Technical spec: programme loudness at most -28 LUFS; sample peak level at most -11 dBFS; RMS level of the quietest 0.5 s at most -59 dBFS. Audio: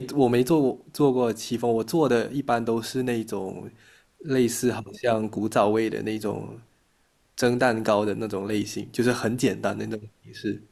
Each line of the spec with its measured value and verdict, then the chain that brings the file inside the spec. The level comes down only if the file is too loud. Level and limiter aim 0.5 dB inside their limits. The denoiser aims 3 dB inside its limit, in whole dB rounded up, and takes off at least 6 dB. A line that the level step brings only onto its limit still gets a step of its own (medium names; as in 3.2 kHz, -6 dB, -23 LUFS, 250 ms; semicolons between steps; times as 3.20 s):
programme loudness -25.0 LUFS: fail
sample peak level -7.0 dBFS: fail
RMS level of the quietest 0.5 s -66 dBFS: pass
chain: trim -3.5 dB; peak limiter -11.5 dBFS